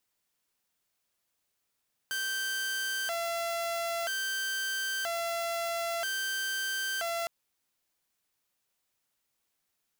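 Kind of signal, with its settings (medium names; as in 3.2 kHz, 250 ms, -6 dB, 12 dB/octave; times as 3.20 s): siren hi-lo 677–1560 Hz 0.51 per s saw -28 dBFS 5.16 s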